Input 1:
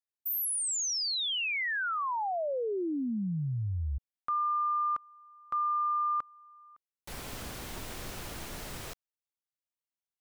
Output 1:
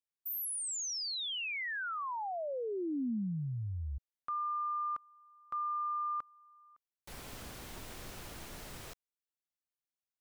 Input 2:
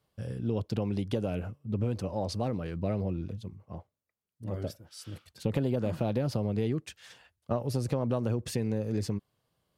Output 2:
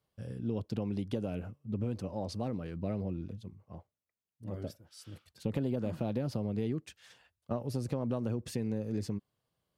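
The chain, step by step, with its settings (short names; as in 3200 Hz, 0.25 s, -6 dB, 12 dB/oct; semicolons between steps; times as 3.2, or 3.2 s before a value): dynamic EQ 240 Hz, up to +4 dB, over -43 dBFS, Q 1.3; gain -6 dB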